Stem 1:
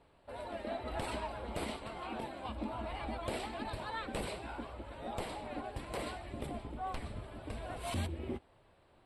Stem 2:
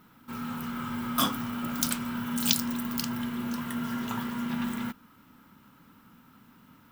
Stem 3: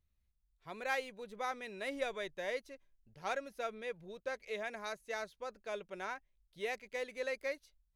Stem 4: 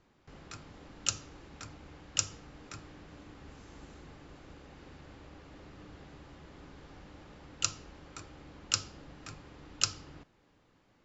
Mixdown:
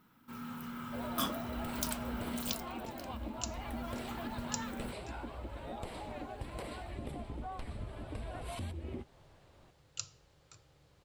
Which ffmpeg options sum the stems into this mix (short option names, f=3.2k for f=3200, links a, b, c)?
-filter_complex "[0:a]acompressor=threshold=-41dB:ratio=10,lowshelf=f=190:g=5,adelay=650,volume=1dB[a];[1:a]volume=-0.5dB,afade=t=out:st=2.3:d=0.38:silence=0.266073,afade=t=in:st=3.55:d=0.28:silence=0.398107[b];[3:a]acrusher=bits=10:mix=0:aa=0.000001,equalizer=f=125:t=o:w=1:g=11,equalizer=f=250:t=o:w=1:g=-11,equalizer=f=500:t=o:w=1:g=6,equalizer=f=4k:t=o:w=1:g=6,equalizer=f=8k:t=o:w=1:g=7,adelay=2350,volume=-16.5dB[c];[a][b][c]amix=inputs=3:normalize=0"